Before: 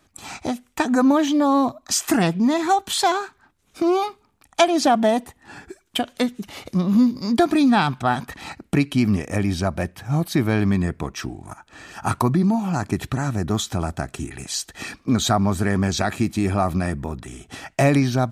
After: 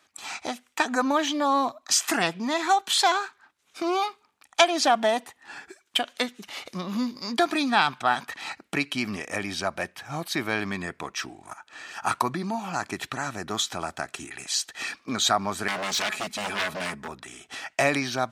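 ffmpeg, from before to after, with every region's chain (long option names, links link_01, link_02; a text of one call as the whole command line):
ffmpeg -i in.wav -filter_complex "[0:a]asettb=1/sr,asplit=3[link_01][link_02][link_03];[link_01]atrim=end=15.684[link_04];[link_02]atrim=start=15.68:end=17.08,asetpts=PTS-STARTPTS,afade=type=in:duration=0.004:curve=qsin,afade=type=out:start_time=1.396:duration=0.004:curve=qsin,aecho=1:1:4.7:0.67,atrim=end_sample=61740,aeval=exprs='0.1*(abs(mod(val(0)/0.1+3,4)-2)-1)':channel_layout=same[link_05];[link_03]atrim=start=17.076[link_06];[link_04][link_05]acrossfade=duration=0.004:curve1=hsin:curve2=qsin[link_07];[link_07][link_06]acrossfade=duration=0.004:curve1=qsin:curve2=hsin,highpass=frequency=1500:poles=1,highshelf=frequency=7700:gain=-10.5,volume=4dB" out.wav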